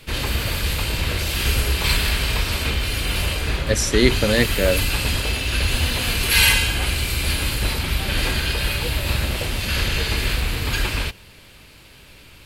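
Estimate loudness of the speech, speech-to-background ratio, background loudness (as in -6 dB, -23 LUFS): -20.5 LUFS, 1.0 dB, -21.5 LUFS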